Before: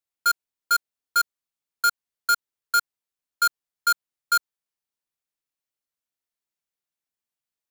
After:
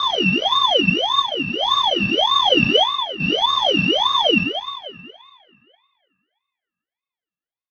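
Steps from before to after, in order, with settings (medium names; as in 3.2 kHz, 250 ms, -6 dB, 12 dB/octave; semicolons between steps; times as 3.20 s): spectrogram pixelated in time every 400 ms; reverb removal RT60 1.3 s; 0.74–1.19 s: comb 6.4 ms, depth 53%; 3.44–3.92 s: tilt shelf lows -3.5 dB; waveshaping leveller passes 5; mistuned SSB -160 Hz 390–3200 Hz; 2.30–2.77 s: flutter echo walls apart 9.8 m, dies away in 1.2 s; reverberation RT60 2.3 s, pre-delay 3 ms, DRR -4 dB; ring modulator with a swept carrier 1.9 kHz, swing 25%, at 1.7 Hz; trim -1 dB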